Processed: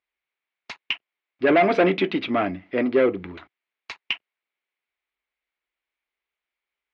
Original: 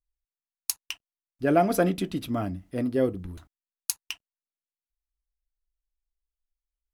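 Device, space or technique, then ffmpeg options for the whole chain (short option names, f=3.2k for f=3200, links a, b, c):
overdrive pedal into a guitar cabinet: -filter_complex "[0:a]asplit=2[a][b];[b]highpass=f=720:p=1,volume=25dB,asoftclip=type=tanh:threshold=-4.5dB[c];[a][c]amix=inputs=2:normalize=0,lowpass=f=4.2k:p=1,volume=-6dB,highpass=85,equalizer=f=130:t=q:w=4:g=-8,equalizer=f=380:t=q:w=4:g=5,equalizer=f=2.2k:t=q:w=4:g=9,lowpass=f=3.6k:w=0.5412,lowpass=f=3.6k:w=1.3066,volume=-5dB"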